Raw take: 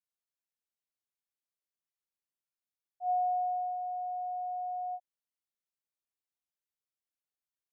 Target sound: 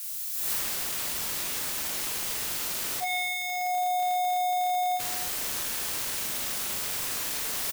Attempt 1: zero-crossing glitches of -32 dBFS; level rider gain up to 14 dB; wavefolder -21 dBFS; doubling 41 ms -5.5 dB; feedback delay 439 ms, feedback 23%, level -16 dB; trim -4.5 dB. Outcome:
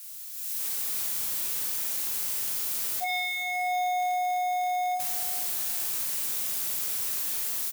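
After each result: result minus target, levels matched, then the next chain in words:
echo 155 ms late; zero-crossing glitches: distortion -6 dB
zero-crossing glitches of -32 dBFS; level rider gain up to 14 dB; wavefolder -21 dBFS; doubling 41 ms -5.5 dB; feedback delay 284 ms, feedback 23%, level -16 dB; trim -4.5 dB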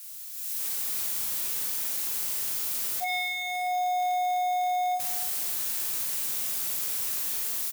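zero-crossing glitches: distortion -6 dB
zero-crossing glitches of -25.5 dBFS; level rider gain up to 14 dB; wavefolder -21 dBFS; doubling 41 ms -5.5 dB; feedback delay 284 ms, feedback 23%, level -16 dB; trim -4.5 dB

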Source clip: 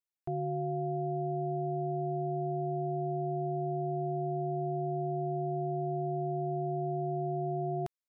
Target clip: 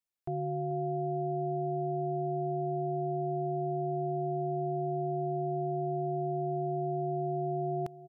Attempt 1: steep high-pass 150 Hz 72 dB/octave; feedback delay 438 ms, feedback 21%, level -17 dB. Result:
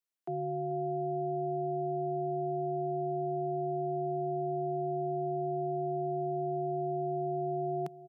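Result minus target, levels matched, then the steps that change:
125 Hz band -3.5 dB
remove: steep high-pass 150 Hz 72 dB/octave

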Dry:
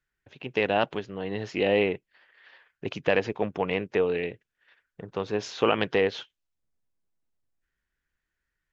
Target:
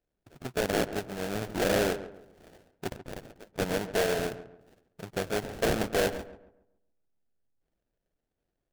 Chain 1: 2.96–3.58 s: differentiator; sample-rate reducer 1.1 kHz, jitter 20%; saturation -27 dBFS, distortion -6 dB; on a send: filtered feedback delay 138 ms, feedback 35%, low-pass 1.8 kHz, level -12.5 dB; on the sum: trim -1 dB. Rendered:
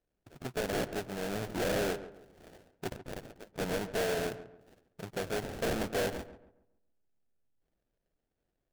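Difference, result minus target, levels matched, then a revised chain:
saturation: distortion +8 dB
2.96–3.58 s: differentiator; sample-rate reducer 1.1 kHz, jitter 20%; saturation -17 dBFS, distortion -14 dB; on a send: filtered feedback delay 138 ms, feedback 35%, low-pass 1.8 kHz, level -12.5 dB; on the sum: trim -1 dB

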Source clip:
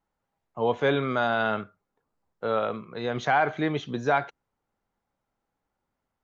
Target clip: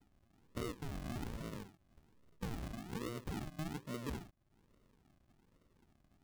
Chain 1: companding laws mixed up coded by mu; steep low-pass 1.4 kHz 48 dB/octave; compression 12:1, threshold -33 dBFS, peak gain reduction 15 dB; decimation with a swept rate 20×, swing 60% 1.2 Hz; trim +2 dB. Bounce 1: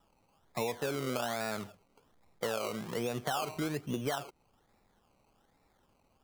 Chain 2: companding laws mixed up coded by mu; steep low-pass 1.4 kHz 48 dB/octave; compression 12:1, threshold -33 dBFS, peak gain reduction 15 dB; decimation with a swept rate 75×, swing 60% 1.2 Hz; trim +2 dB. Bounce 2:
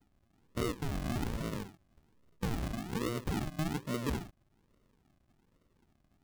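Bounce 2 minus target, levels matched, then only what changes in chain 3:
compression: peak gain reduction -8 dB
change: compression 12:1, threshold -41.5 dBFS, peak gain reduction 23 dB

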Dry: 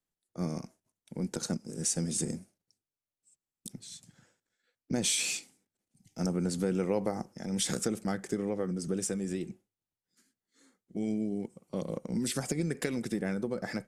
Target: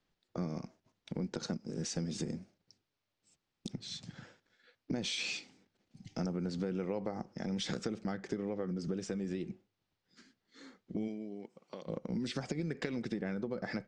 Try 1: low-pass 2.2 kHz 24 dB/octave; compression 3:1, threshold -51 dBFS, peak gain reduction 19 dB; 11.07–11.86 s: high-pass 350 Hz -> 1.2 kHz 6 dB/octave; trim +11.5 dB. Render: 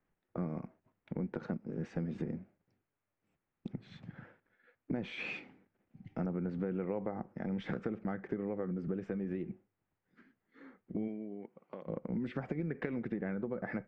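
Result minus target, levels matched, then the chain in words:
4 kHz band -13.5 dB
low-pass 5.1 kHz 24 dB/octave; compression 3:1, threshold -51 dBFS, peak gain reduction 19 dB; 11.07–11.86 s: high-pass 350 Hz -> 1.2 kHz 6 dB/octave; trim +11.5 dB

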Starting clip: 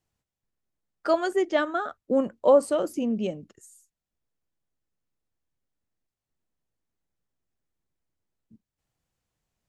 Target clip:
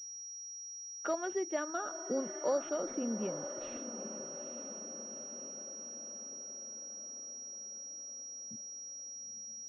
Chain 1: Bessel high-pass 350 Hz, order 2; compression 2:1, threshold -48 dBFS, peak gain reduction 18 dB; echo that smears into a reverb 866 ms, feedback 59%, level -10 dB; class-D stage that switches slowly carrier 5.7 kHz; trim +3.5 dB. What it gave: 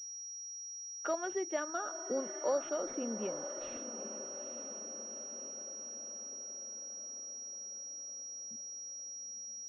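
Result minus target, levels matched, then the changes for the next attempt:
125 Hz band -5.5 dB
change: Bessel high-pass 120 Hz, order 2

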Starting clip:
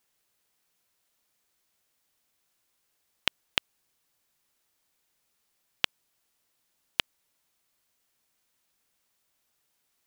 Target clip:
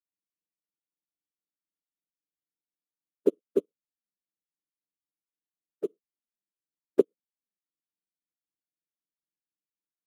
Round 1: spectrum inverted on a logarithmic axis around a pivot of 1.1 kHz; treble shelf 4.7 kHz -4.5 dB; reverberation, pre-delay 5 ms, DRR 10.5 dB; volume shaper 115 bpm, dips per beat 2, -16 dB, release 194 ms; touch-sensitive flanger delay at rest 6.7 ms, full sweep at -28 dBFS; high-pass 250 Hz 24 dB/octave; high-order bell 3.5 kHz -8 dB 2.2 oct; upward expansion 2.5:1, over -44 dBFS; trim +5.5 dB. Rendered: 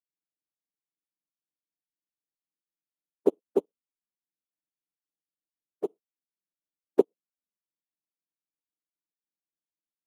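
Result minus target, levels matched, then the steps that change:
1 kHz band +10.0 dB
add after spectrum inverted on a logarithmic axis: Butterworth band-stop 820 Hz, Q 1.2

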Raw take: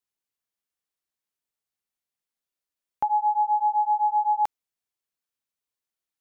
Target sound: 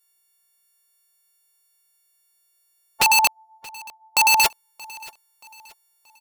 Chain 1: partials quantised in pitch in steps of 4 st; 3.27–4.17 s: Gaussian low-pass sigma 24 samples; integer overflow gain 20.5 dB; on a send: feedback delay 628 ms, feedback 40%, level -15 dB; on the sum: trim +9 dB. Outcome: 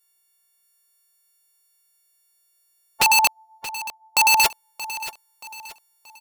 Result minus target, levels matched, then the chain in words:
echo-to-direct +7.5 dB
partials quantised in pitch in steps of 4 st; 3.27–4.17 s: Gaussian low-pass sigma 24 samples; integer overflow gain 20.5 dB; on a send: feedback delay 628 ms, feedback 40%, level -22.5 dB; on the sum: trim +9 dB

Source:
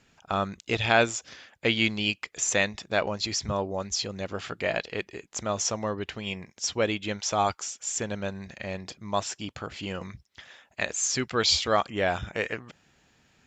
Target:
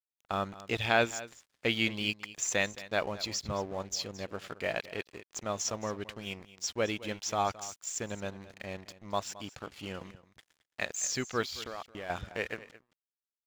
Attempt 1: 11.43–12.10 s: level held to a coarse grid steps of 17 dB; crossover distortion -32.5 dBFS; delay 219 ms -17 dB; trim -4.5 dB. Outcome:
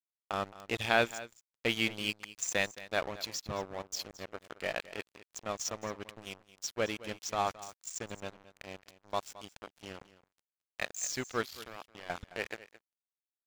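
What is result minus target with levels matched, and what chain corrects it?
crossover distortion: distortion +10 dB
11.43–12.10 s: level held to a coarse grid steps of 17 dB; crossover distortion -44 dBFS; delay 219 ms -17 dB; trim -4.5 dB

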